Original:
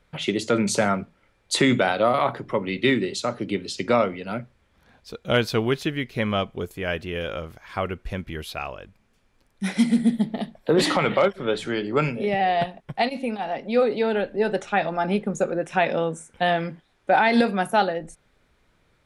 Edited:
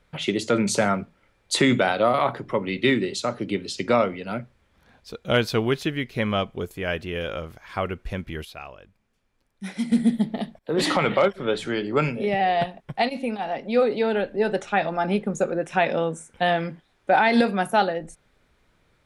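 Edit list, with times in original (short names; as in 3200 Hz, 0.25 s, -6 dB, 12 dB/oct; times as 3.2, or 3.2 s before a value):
8.45–9.92 gain -7.5 dB
10.59–10.89 fade in linear, from -22 dB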